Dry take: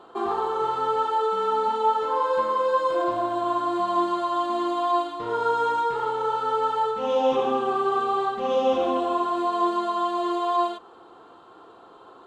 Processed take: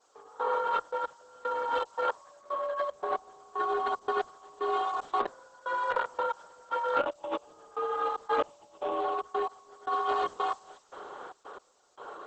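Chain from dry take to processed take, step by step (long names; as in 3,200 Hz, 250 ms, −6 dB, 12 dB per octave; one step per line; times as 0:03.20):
three-way crossover with the lows and the highs turned down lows −16 dB, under 220 Hz, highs −22 dB, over 3,800 Hz
compressor whose output falls as the input rises −30 dBFS, ratio −1
gate pattern "...xxx.x" 114 BPM −24 dB
frequency shifter +60 Hz
background noise violet −60 dBFS
Opus 10 kbit/s 48,000 Hz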